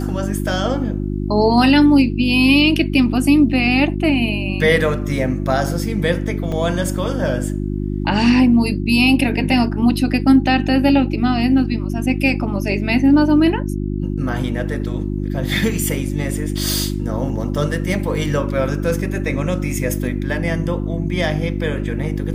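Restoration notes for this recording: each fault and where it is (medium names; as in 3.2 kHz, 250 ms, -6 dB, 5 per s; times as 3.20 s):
hum 50 Hz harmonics 7 -22 dBFS
6.52 s: dropout 2.4 ms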